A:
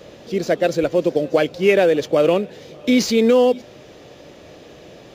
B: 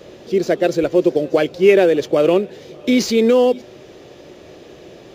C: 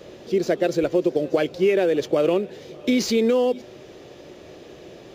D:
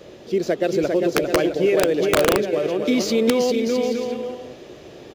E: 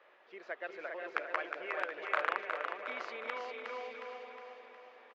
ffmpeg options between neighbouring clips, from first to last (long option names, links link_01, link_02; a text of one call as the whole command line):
ffmpeg -i in.wav -af "equalizer=frequency=370:width_type=o:width=0.26:gain=8.5" out.wav
ffmpeg -i in.wav -af "acompressor=threshold=-13dB:ratio=6,volume=-2.5dB" out.wav
ffmpeg -i in.wav -af "aecho=1:1:400|660|829|938.8|1010:0.631|0.398|0.251|0.158|0.1,aeval=exprs='(mod(2.66*val(0)+1,2)-1)/2.66':channel_layout=same" out.wav
ffmpeg -i in.wav -filter_complex "[0:a]asuperpass=centerf=1400:order=4:qfactor=1.1,asplit=2[link_01][link_02];[link_02]aecho=0:1:362|724|1086|1448|1810|2172|2534:0.501|0.266|0.141|0.0746|0.0395|0.021|0.0111[link_03];[link_01][link_03]amix=inputs=2:normalize=0,volume=-8dB" out.wav